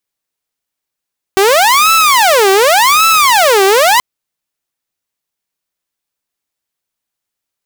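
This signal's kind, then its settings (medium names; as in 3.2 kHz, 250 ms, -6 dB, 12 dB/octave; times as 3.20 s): siren wail 384–1320 Hz 0.88 per s saw -3.5 dBFS 2.63 s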